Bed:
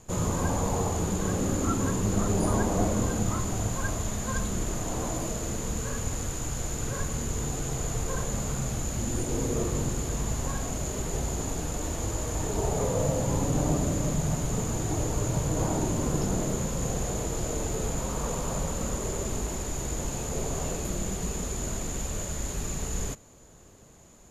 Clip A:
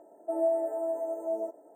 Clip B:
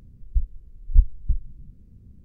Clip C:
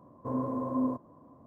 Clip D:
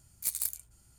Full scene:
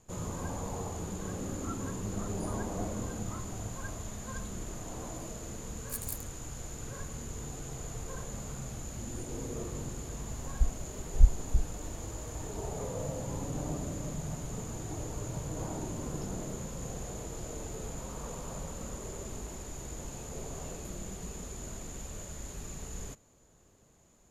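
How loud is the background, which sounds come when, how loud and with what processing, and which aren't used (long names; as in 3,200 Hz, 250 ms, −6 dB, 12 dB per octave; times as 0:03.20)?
bed −10 dB
0:05.67: mix in D −7.5 dB
0:10.25: mix in B −1.5 dB + bass and treble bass −3 dB, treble +13 dB
not used: A, C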